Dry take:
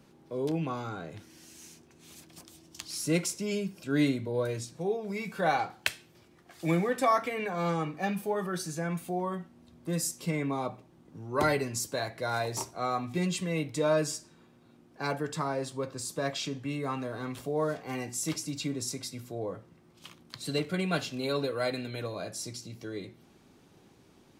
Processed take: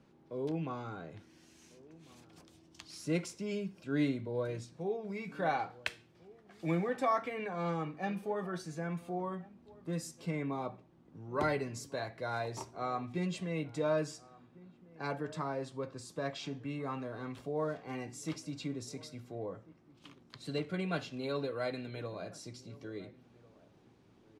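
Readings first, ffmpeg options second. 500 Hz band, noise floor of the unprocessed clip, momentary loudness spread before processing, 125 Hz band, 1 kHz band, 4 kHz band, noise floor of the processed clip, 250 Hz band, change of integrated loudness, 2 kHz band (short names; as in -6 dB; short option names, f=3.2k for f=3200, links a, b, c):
-5.0 dB, -60 dBFS, 17 LU, -5.0 dB, -5.5 dB, -9.5 dB, -64 dBFS, -5.0 dB, -5.5 dB, -6.5 dB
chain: -filter_complex "[0:a]aemphasis=mode=reproduction:type=50fm,asplit=2[a][b];[b]adelay=1399,volume=-21dB,highshelf=f=4k:g=-31.5[c];[a][c]amix=inputs=2:normalize=0,volume=-5.5dB"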